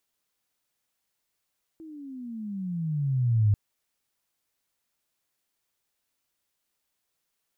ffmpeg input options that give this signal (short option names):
-f lavfi -i "aevalsrc='pow(10,(-17+24*(t/1.74-1))/20)*sin(2*PI*329*1.74/(-20.5*log(2)/12)*(exp(-20.5*log(2)/12*t/1.74)-1))':d=1.74:s=44100"